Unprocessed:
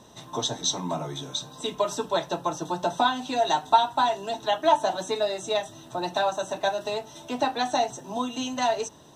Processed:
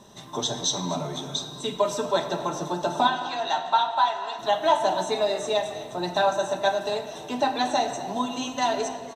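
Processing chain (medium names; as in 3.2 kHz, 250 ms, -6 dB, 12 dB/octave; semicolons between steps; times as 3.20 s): 3.07–4.39 s: band-pass 710–4700 Hz; frequency-shifting echo 244 ms, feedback 47%, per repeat +69 Hz, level -17.5 dB; simulated room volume 3200 m³, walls mixed, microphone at 1.2 m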